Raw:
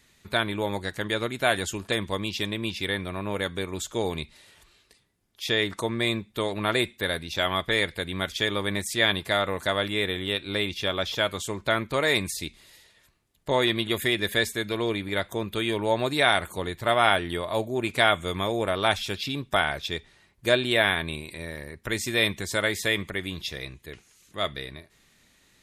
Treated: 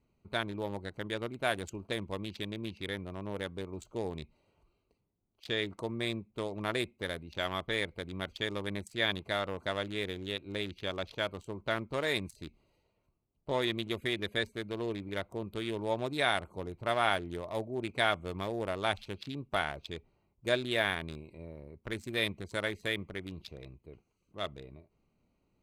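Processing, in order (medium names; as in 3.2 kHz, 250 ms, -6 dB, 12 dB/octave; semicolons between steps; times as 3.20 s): local Wiener filter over 25 samples; trim -7.5 dB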